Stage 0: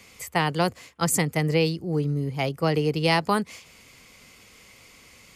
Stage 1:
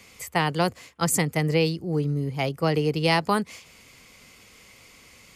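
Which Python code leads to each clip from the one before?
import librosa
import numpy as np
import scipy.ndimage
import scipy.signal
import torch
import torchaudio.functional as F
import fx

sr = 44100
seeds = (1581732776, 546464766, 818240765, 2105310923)

y = x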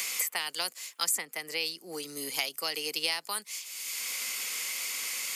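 y = scipy.signal.sosfilt(scipy.signal.butter(4, 200.0, 'highpass', fs=sr, output='sos'), x)
y = np.diff(y, prepend=0.0)
y = fx.band_squash(y, sr, depth_pct=100)
y = F.gain(torch.from_numpy(y), 5.5).numpy()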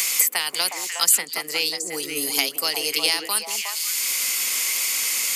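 y = fx.high_shelf(x, sr, hz=5000.0, db=7.0)
y = fx.echo_stepped(y, sr, ms=181, hz=310.0, octaves=1.4, feedback_pct=70, wet_db=0.0)
y = F.gain(torch.from_numpy(y), 6.5).numpy()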